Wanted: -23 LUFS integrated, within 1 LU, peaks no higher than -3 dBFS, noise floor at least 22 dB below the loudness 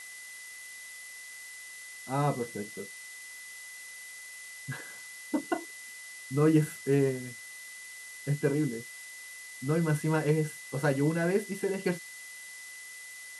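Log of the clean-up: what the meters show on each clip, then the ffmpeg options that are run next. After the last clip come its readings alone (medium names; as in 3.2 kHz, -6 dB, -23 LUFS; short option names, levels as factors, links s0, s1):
steady tone 2 kHz; tone level -45 dBFS; noise floor -46 dBFS; noise floor target -55 dBFS; loudness -33.0 LUFS; peak level -13.5 dBFS; loudness target -23.0 LUFS
-> -af "bandreject=f=2000:w=30"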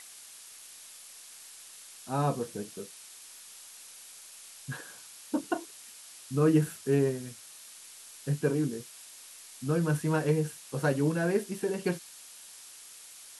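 steady tone not found; noise floor -50 dBFS; noise floor target -53 dBFS
-> -af "afftdn=nr=6:nf=-50"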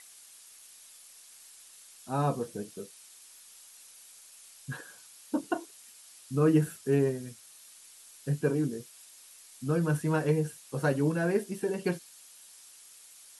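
noise floor -54 dBFS; loudness -30.5 LUFS; peak level -13.5 dBFS; loudness target -23.0 LUFS
-> -af "volume=2.37"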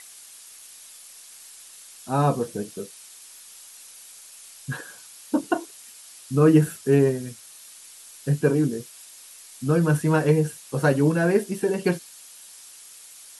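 loudness -23.0 LUFS; peak level -6.0 dBFS; noise floor -47 dBFS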